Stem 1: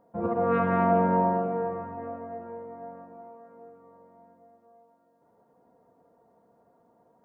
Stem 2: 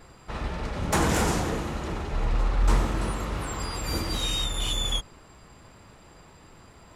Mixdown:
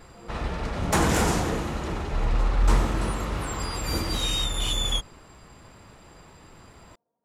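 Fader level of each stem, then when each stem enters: −18.5, +1.5 decibels; 0.00, 0.00 seconds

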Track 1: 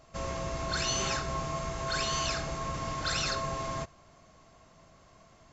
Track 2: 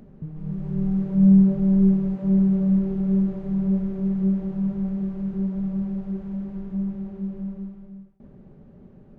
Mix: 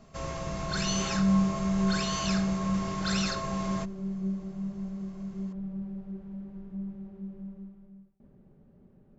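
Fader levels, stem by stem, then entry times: −1.0, −10.0 decibels; 0.00, 0.00 seconds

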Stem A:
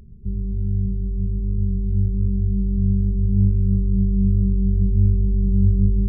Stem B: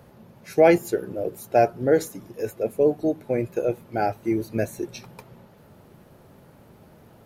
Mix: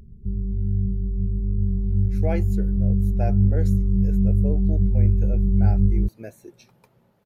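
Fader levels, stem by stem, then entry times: −1.0, −13.0 decibels; 0.00, 1.65 seconds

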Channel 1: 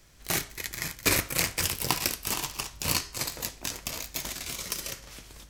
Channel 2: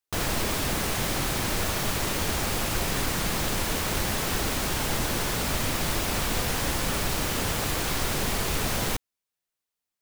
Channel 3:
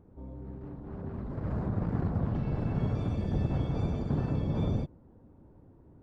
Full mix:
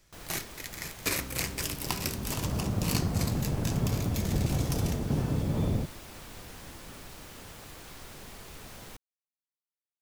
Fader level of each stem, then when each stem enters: −6.0, −19.0, +1.0 decibels; 0.00, 0.00, 1.00 seconds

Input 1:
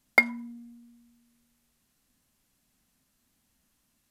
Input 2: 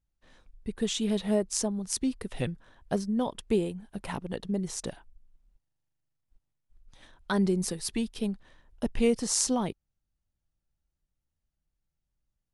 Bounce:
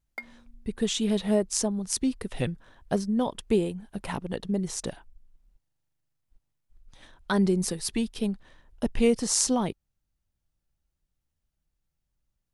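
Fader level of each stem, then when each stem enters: −19.0, +2.5 decibels; 0.00, 0.00 seconds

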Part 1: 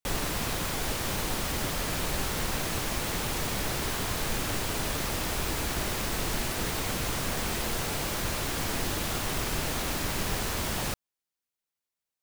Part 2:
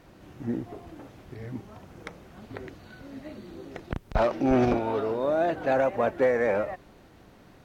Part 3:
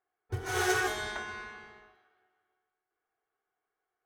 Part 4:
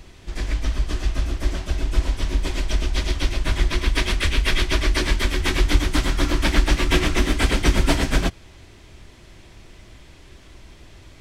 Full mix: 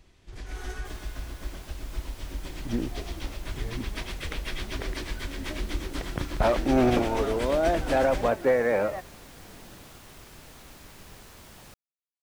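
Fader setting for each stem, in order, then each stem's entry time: −18.0, +0.5, −14.5, −14.0 decibels; 0.80, 2.25, 0.00, 0.00 seconds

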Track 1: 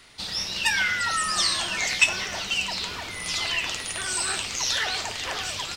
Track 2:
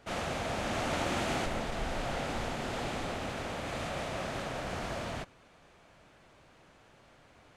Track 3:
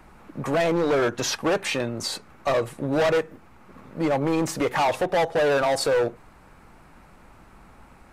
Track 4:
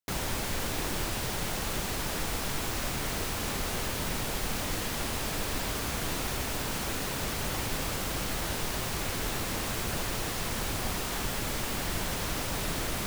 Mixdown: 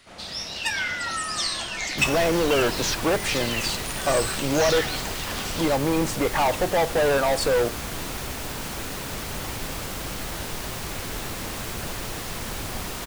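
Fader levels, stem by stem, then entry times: −3.5, −9.5, 0.0, +0.5 decibels; 0.00, 0.00, 1.60, 1.90 seconds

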